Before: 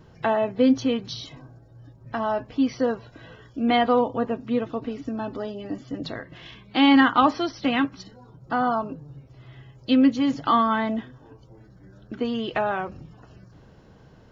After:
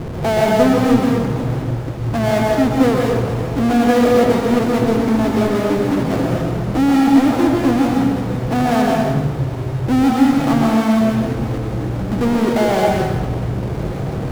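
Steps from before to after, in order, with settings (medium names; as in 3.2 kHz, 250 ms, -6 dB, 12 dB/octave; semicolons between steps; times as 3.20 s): low-pass that closes with the level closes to 510 Hz, closed at -14.5 dBFS; inverse Chebyshev low-pass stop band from 4 kHz, stop band 80 dB; power-law waveshaper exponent 0.35; plate-style reverb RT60 1.2 s, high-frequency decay 0.8×, pre-delay 115 ms, DRR -1.5 dB; trim -1 dB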